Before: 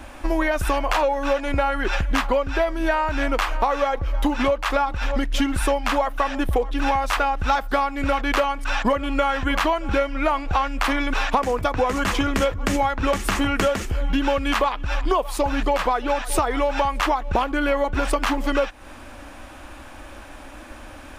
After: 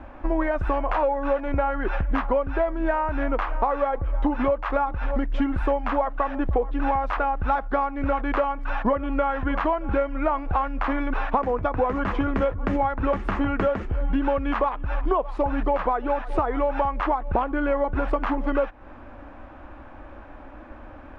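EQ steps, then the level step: low-pass 1.4 kHz 12 dB/octave; -1.5 dB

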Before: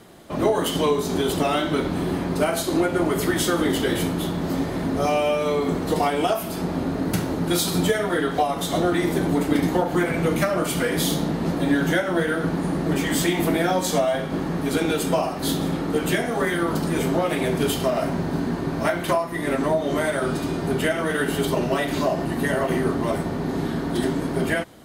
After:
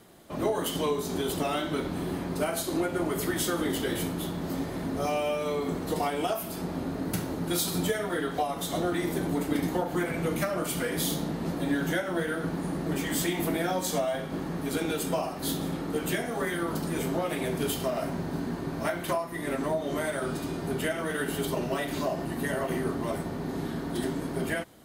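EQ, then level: treble shelf 9.8 kHz +7.5 dB; -7.5 dB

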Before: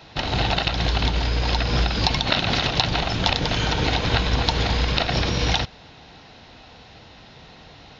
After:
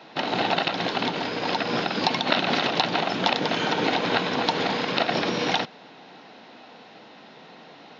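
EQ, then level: high-pass 200 Hz 24 dB/octave; treble shelf 3.8 kHz -11.5 dB; +2.0 dB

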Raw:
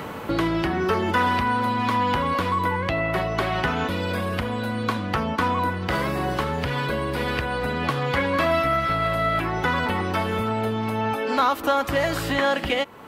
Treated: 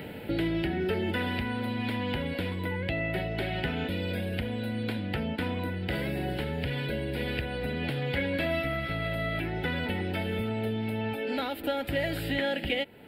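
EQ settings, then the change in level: static phaser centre 2.7 kHz, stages 4; -4.0 dB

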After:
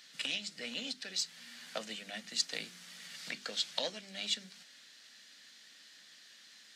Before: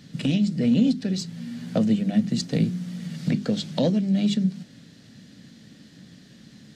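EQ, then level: high-pass 1.3 kHz 12 dB/octave; 0.0 dB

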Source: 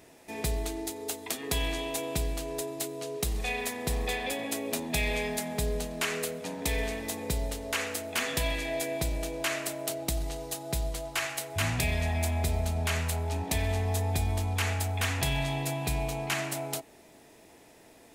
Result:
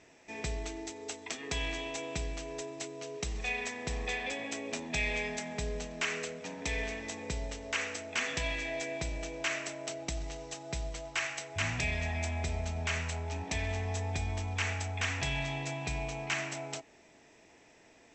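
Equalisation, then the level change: rippled Chebyshev low-pass 7.9 kHz, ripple 6 dB; 0.0 dB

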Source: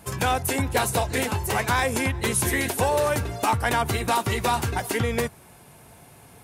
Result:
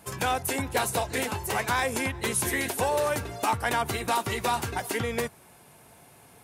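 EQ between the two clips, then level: bass shelf 140 Hz -8 dB; -3.0 dB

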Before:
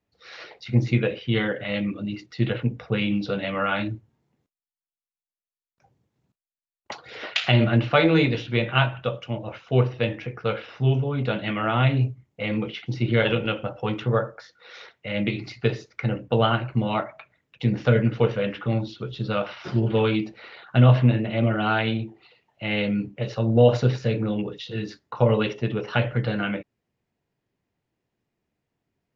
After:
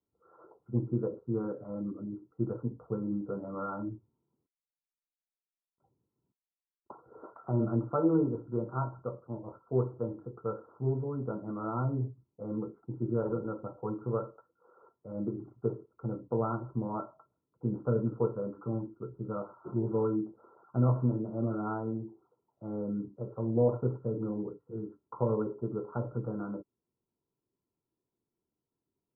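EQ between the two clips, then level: rippled Chebyshev low-pass 1.4 kHz, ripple 9 dB; distance through air 460 m; -3.5 dB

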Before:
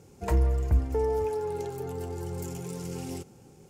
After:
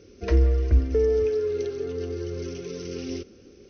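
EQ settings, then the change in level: brick-wall FIR low-pass 6.3 kHz; static phaser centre 350 Hz, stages 4; +7.0 dB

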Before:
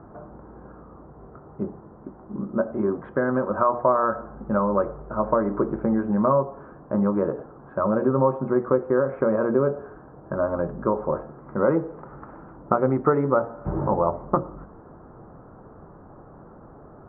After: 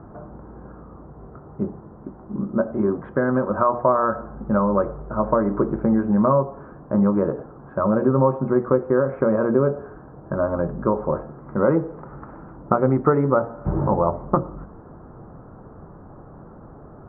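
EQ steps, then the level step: tone controls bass +4 dB, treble -5 dB; +1.5 dB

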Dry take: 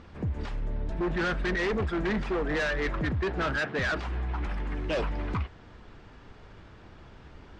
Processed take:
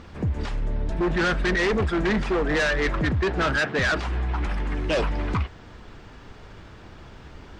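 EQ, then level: treble shelf 6.1 kHz +8 dB; +5.5 dB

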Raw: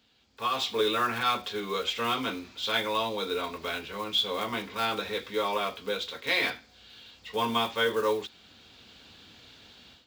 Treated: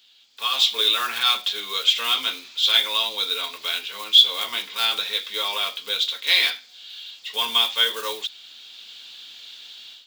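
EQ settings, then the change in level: high-pass 1.4 kHz 6 dB/octave; peaking EQ 3.4 kHz +8.5 dB 0.74 oct; treble shelf 4.5 kHz +9.5 dB; +3.0 dB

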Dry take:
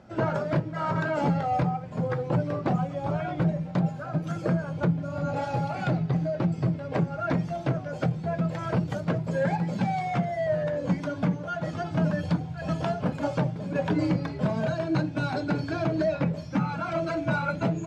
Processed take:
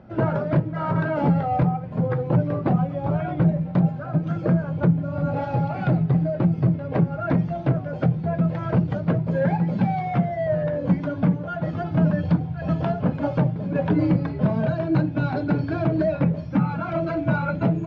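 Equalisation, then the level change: distance through air 240 m; bass shelf 410 Hz +5 dB; +2.0 dB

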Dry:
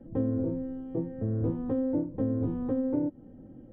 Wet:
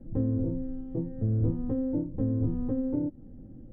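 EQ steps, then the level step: bass shelf 68 Hz +11 dB; bass shelf 380 Hz +9.5 dB; -7.5 dB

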